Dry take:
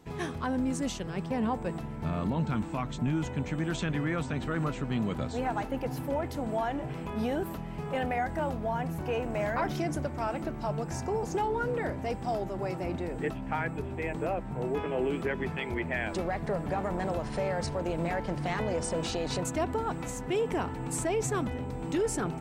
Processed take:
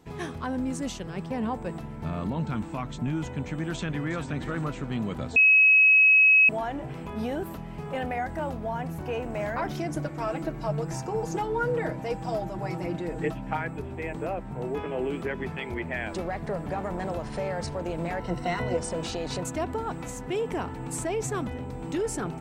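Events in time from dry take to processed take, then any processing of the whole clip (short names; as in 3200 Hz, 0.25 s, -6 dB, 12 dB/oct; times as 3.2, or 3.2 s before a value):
3.75–4.26 echo throw 0.35 s, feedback 35%, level -11.5 dB
5.36–6.49 bleep 2560 Hz -14 dBFS
9.96–13.57 comb 6.3 ms, depth 77%
18.2–18.77 ripple EQ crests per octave 2, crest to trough 13 dB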